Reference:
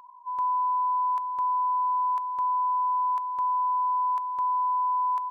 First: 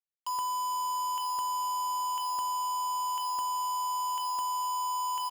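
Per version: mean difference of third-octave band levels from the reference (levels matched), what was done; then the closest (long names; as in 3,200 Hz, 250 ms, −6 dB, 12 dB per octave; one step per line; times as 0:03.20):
12.5 dB: downward compressor 5 to 1, threshold −31 dBFS, peak gain reduction 6.5 dB
bit-depth reduction 6 bits, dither none
on a send: echo with shifted repeats 452 ms, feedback 49%, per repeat −77 Hz, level −16.5 dB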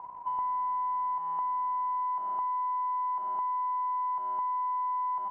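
3.0 dB: variable-slope delta modulation 16 kbit/s
low-pass with resonance 840 Hz, resonance Q 4.9
downward compressor 5 to 1, threshold −31 dBFS, peak gain reduction 11 dB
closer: second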